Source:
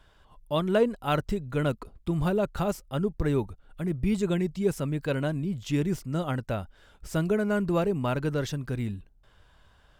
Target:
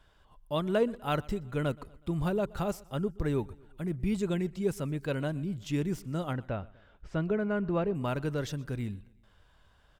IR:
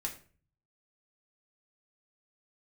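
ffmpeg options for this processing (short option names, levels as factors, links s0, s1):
-filter_complex "[0:a]asettb=1/sr,asplit=3[s0][s1][s2];[s0]atrim=end=6.334[s3];[s1]atrim=start=6.33:end=7.95,asetpts=PTS-STARTPTS,afade=t=in:d=0.004:c=qsin,afade=t=out:st=1.616:d=0.004:c=qsin,lowpass=2800[s4];[s2]atrim=start=7.946[s5];[s3][s4]acrossfade=d=0.004:c1=hsin:c2=qsin[s6];[s6][s5]acrossfade=d=0.004:c1=qsin:c2=hsin,aecho=1:1:123|246|369:0.0668|0.0348|0.0181,volume=0.631"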